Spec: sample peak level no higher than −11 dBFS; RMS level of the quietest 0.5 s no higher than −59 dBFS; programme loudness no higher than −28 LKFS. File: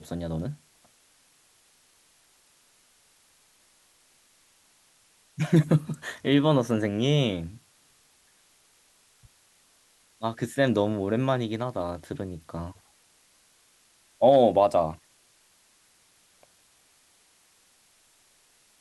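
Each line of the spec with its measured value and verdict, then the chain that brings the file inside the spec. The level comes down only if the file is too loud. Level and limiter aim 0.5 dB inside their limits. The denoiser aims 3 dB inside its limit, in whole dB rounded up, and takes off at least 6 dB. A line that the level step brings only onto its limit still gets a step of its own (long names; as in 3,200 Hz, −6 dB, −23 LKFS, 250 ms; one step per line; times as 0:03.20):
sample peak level −8.0 dBFS: out of spec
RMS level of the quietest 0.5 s −63 dBFS: in spec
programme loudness −25.5 LKFS: out of spec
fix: level −3 dB
brickwall limiter −11.5 dBFS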